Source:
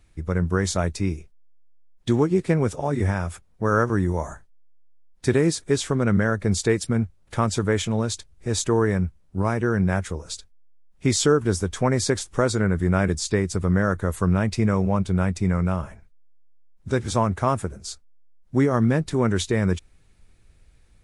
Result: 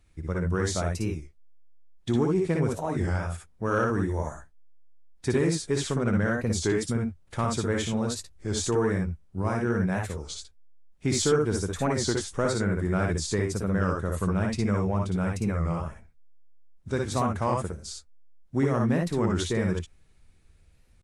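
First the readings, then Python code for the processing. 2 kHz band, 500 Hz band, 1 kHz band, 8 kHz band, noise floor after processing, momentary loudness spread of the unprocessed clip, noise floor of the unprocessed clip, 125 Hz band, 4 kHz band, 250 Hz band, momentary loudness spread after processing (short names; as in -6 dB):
-4.0 dB, -4.0 dB, -4.0 dB, -3.5 dB, -58 dBFS, 9 LU, -56 dBFS, -4.5 dB, -3.5 dB, -4.5 dB, 9 LU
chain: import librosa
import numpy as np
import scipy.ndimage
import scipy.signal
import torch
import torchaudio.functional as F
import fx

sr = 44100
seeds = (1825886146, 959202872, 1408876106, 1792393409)

y = fx.room_early_taps(x, sr, ms=(59, 72), db=(-3.5, -8.0))
y = 10.0 ** (-6.5 / 20.0) * np.tanh(y / 10.0 ** (-6.5 / 20.0))
y = fx.record_warp(y, sr, rpm=33.33, depth_cents=160.0)
y = F.gain(torch.from_numpy(y), -5.5).numpy()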